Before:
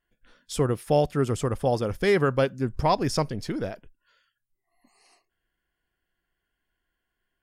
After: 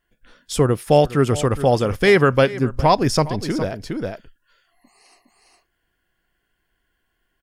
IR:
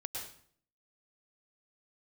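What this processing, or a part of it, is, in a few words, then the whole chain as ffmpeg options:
ducked delay: -filter_complex "[0:a]asplit=3[a][b][c];[b]adelay=411,volume=-3dB[d];[c]apad=whole_len=345466[e];[d][e]sidechaincompress=threshold=-34dB:ratio=10:attack=6.8:release=365[f];[a][f]amix=inputs=2:normalize=0,asettb=1/sr,asplit=3[g][h][i];[g]atrim=end=0.914[j];[h]atrim=start=0.91:end=2.58,asetpts=PTS-STARTPTS,afade=t=in:d=0.004:c=qsin,afade=t=out:st=1.666:d=0.004:c=qsin,equalizer=f=2.4k:t=o:w=1.6:g=3.5[k];[i]atrim=start=2.576[l];[j][k]acrossfade=d=0.004:c1=hsin:c2=qsin[m];[m][l]acrossfade=d=0.004:c1=qsin:c2=hsin,volume=7dB"

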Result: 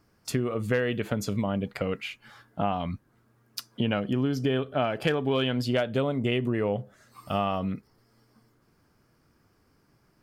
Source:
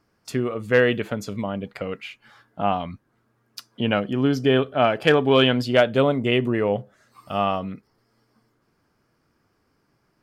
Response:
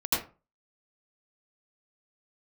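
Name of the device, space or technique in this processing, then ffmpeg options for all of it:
ASMR close-microphone chain: -af "lowshelf=f=190:g=6,acompressor=threshold=-23dB:ratio=6,highshelf=f=7k:g=6"

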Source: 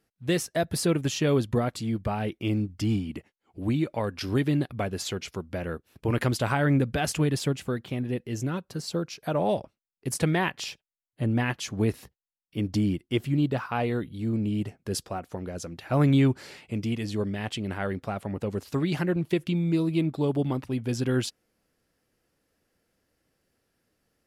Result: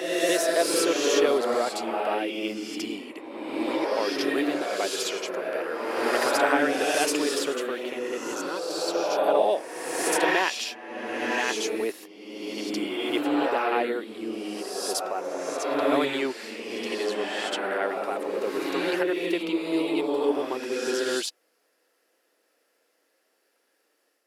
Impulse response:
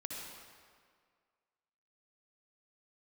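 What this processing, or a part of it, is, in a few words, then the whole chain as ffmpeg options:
ghost voice: -filter_complex "[0:a]areverse[a];[1:a]atrim=start_sample=2205[b];[a][b]afir=irnorm=-1:irlink=0,areverse,highpass=f=370:w=0.5412,highpass=f=370:w=1.3066,volume=7dB"

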